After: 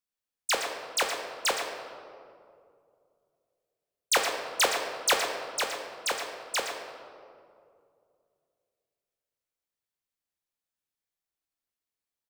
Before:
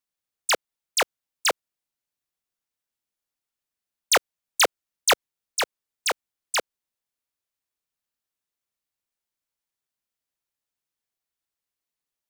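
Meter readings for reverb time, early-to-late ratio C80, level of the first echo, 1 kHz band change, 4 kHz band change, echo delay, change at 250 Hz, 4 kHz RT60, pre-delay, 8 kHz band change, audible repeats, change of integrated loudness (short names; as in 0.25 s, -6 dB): 2.4 s, 4.5 dB, -9.5 dB, -3.0 dB, -3.5 dB, 0.118 s, -2.0 dB, 1.2 s, 4 ms, -4.0 dB, 1, -4.0 dB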